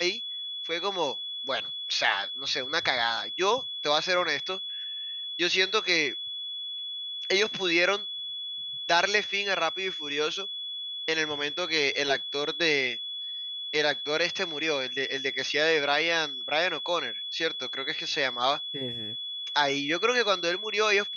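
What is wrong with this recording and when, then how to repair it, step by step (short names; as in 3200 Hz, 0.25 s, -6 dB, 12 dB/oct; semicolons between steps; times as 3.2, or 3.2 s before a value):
tone 3400 Hz -33 dBFS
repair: notch 3400 Hz, Q 30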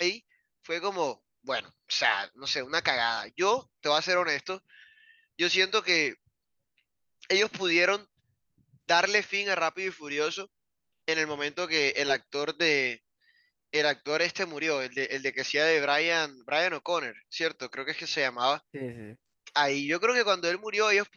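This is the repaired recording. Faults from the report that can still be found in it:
none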